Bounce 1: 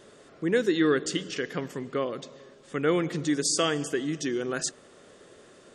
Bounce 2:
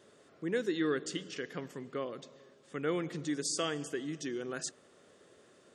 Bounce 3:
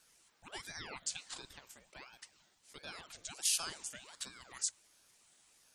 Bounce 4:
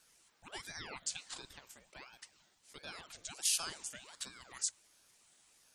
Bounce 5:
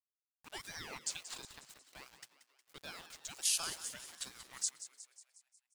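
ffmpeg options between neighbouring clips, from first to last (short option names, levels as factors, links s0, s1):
-af "highpass=68,volume=0.376"
-af "aderivative,aeval=exprs='val(0)*sin(2*PI*1100*n/s+1100*0.85/1.4*sin(2*PI*1.4*n/s))':c=same,volume=2.37"
-af anull
-filter_complex "[0:a]aeval=exprs='val(0)*gte(abs(val(0)),0.00299)':c=same,asplit=2[s0][s1];[s1]asplit=6[s2][s3][s4][s5][s6][s7];[s2]adelay=181,afreqshift=120,volume=0.224[s8];[s3]adelay=362,afreqshift=240,volume=0.127[s9];[s4]adelay=543,afreqshift=360,volume=0.0724[s10];[s5]adelay=724,afreqshift=480,volume=0.0417[s11];[s6]adelay=905,afreqshift=600,volume=0.0237[s12];[s7]adelay=1086,afreqshift=720,volume=0.0135[s13];[s8][s9][s10][s11][s12][s13]amix=inputs=6:normalize=0[s14];[s0][s14]amix=inputs=2:normalize=0"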